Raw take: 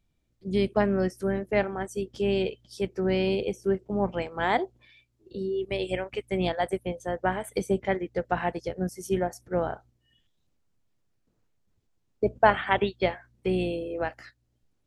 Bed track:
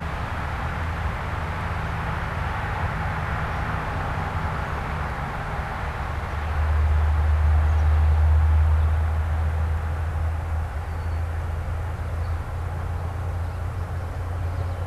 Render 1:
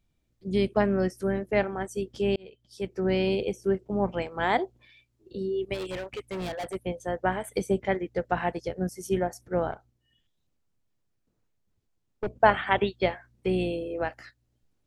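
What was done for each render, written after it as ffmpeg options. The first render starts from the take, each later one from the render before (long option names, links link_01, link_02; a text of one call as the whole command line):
ffmpeg -i in.wav -filter_complex "[0:a]asplit=3[link_01][link_02][link_03];[link_01]afade=type=out:start_time=5.73:duration=0.02[link_04];[link_02]asoftclip=type=hard:threshold=-31dB,afade=type=in:start_time=5.73:duration=0.02,afade=type=out:start_time=6.74:duration=0.02[link_05];[link_03]afade=type=in:start_time=6.74:duration=0.02[link_06];[link_04][link_05][link_06]amix=inputs=3:normalize=0,asettb=1/sr,asplit=3[link_07][link_08][link_09];[link_07]atrim=end=9.714[link_10];[link_08]atrim=start=9.71:end=12.4,asetpts=PTS-STARTPTS,afade=type=in:duration=0.004:curve=qsin,afade=type=out:start_time=2.686:duration=0.004:curve=qsin,aeval=exprs='(tanh(17.8*val(0)+0.6)-tanh(0.6))/17.8':channel_layout=same[link_11];[link_09]atrim=start=12.396[link_12];[link_10][link_11]acrossfade=duration=0.004:curve1=hsin:curve2=qsin[link_13];[link_13][link_12]acrossfade=duration=0.004:curve1=qsin:curve2=hsin,asplit=2[link_14][link_15];[link_14]atrim=end=2.36,asetpts=PTS-STARTPTS,afade=type=out:start_time=2.356:duration=0.004:curve=hsin[link_16];[link_15]atrim=start=2.36,asetpts=PTS-STARTPTS,afade=type=in:duration=0.7[link_17];[link_16][link_17]concat=n=2:v=0:a=1" out.wav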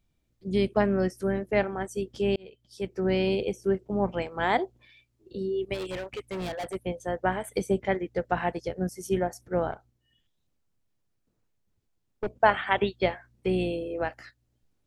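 ffmpeg -i in.wav -filter_complex "[0:a]asettb=1/sr,asplit=3[link_01][link_02][link_03];[link_01]atrim=end=12.274[link_04];[link_02]atrim=start=12.27:end=12.8,asetpts=PTS-STARTPTS,afade=type=in:duration=0.004:curve=qsin,afade=type=out:start_time=0.526:duration=0.004:curve=qsin,lowshelf=frequency=400:gain=-5.5[link_05];[link_03]atrim=start=12.796[link_06];[link_04][link_05]acrossfade=duration=0.004:curve1=hsin:curve2=qsin[link_07];[link_07][link_06]acrossfade=duration=0.004:curve1=qsin:curve2=hsin" out.wav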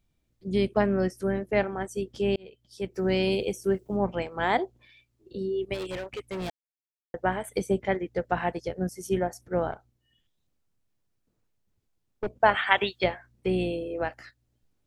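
ffmpeg -i in.wav -filter_complex "[0:a]asettb=1/sr,asplit=3[link_01][link_02][link_03];[link_01]atrim=end=2.944[link_04];[link_02]atrim=start=2.94:end=3.97,asetpts=PTS-STARTPTS,afade=type=in:duration=0.004:curve=qsin,afade=type=out:start_time=1.026:duration=0.004:curve=qsin,aemphasis=mode=production:type=50kf[link_05];[link_03]atrim=start=3.966[link_06];[link_04][link_05]acrossfade=duration=0.004:curve1=hsin:curve2=qsin[link_07];[link_07][link_06]acrossfade=duration=0.004:curve1=qsin:curve2=hsin,asettb=1/sr,asplit=3[link_08][link_09][link_10];[link_08]atrim=end=12.554[link_11];[link_09]atrim=start=12.55:end=13.04,asetpts=PTS-STARTPTS,afade=type=in:duration=0.004:curve=qsin,afade=type=out:start_time=0.486:duration=0.004:curve=qsin,tiltshelf=frequency=660:gain=-7[link_12];[link_10]atrim=start=13.036[link_13];[link_11][link_12]acrossfade=duration=0.004:curve1=hsin:curve2=qsin[link_14];[link_14][link_13]acrossfade=duration=0.004:curve1=qsin:curve2=hsin,asplit=3[link_15][link_16][link_17];[link_15]atrim=end=6.5,asetpts=PTS-STARTPTS,afade=type=out:start_time=6.496:duration=0.004:curve=hsin[link_18];[link_16]atrim=start=6.5:end=7.14,asetpts=PTS-STARTPTS,volume=0[link_19];[link_17]atrim=start=7.14,asetpts=PTS-STARTPTS,afade=type=in:duration=0.004:curve=hsin[link_20];[link_18][link_19][link_20]concat=n=3:v=0:a=1" out.wav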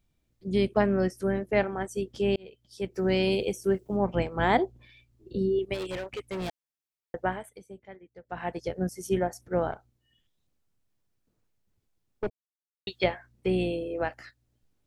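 ffmpeg -i in.wav -filter_complex "[0:a]asettb=1/sr,asplit=3[link_01][link_02][link_03];[link_01]atrim=end=4.144[link_04];[link_02]atrim=start=4.14:end=5.59,asetpts=PTS-STARTPTS,afade=type=in:duration=0.004:curve=qsin,afade=type=out:start_time=1.446:duration=0.004:curve=qsin,lowshelf=frequency=270:gain=10[link_05];[link_03]atrim=start=5.586[link_06];[link_04][link_05]acrossfade=duration=0.004:curve1=hsin:curve2=qsin[link_07];[link_07][link_06]acrossfade=duration=0.004:curve1=qsin:curve2=hsin,asplit=5[link_08][link_09][link_10][link_11][link_12];[link_08]atrim=end=7.58,asetpts=PTS-STARTPTS,afade=type=out:start_time=7.16:duration=0.42:silence=0.1[link_13];[link_09]atrim=start=7.58:end=8.24,asetpts=PTS-STARTPTS,volume=-20dB[link_14];[link_10]atrim=start=8.24:end=12.3,asetpts=PTS-STARTPTS,afade=type=in:duration=0.42:silence=0.1,afade=type=out:start_time=4.056:duration=0.004:curve=hsin[link_15];[link_11]atrim=start=12.3:end=12.87,asetpts=PTS-STARTPTS,volume=0[link_16];[link_12]atrim=start=12.87,asetpts=PTS-STARTPTS,afade=type=in:duration=0.004:curve=hsin[link_17];[link_13][link_14][link_15][link_16][link_17]concat=n=5:v=0:a=1" out.wav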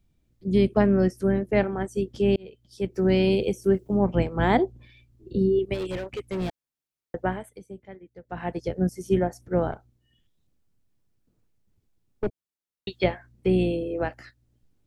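ffmpeg -i in.wav -filter_complex "[0:a]acrossover=split=400|4400[link_01][link_02][link_03];[link_01]acontrast=65[link_04];[link_03]alimiter=level_in=15dB:limit=-24dB:level=0:latency=1,volume=-15dB[link_05];[link_04][link_02][link_05]amix=inputs=3:normalize=0" out.wav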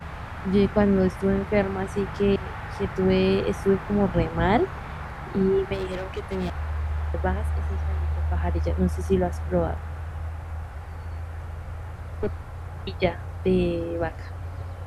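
ffmpeg -i in.wav -i bed.wav -filter_complex "[1:a]volume=-7.5dB[link_01];[0:a][link_01]amix=inputs=2:normalize=0" out.wav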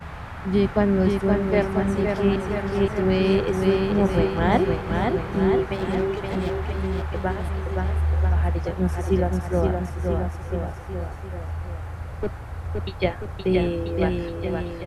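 ffmpeg -i in.wav -af "aecho=1:1:520|988|1409|1788|2129:0.631|0.398|0.251|0.158|0.1" out.wav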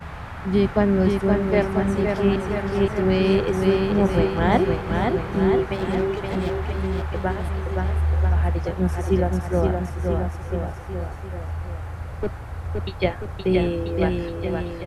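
ffmpeg -i in.wav -af "volume=1dB" out.wav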